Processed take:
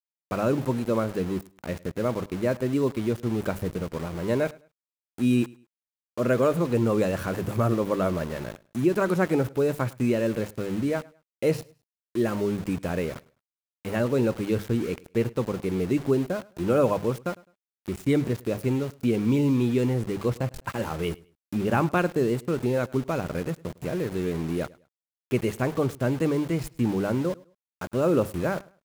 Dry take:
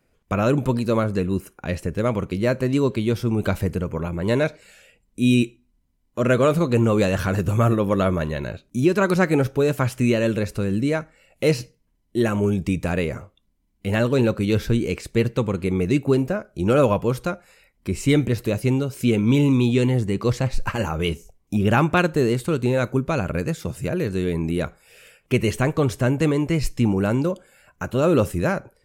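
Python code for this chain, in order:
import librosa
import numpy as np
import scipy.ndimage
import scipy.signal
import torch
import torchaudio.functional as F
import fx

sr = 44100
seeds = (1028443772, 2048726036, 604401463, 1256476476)

y = fx.highpass(x, sr, hz=130.0, slope=6)
y = fx.peak_eq(y, sr, hz=4300.0, db=-9.5, octaves=2.2)
y = fx.hum_notches(y, sr, base_hz=50, count=4)
y = np.where(np.abs(y) >= 10.0 ** (-32.5 / 20.0), y, 0.0)
y = fx.echo_feedback(y, sr, ms=104, feedback_pct=27, wet_db=-23)
y = y * 10.0 ** (-3.0 / 20.0)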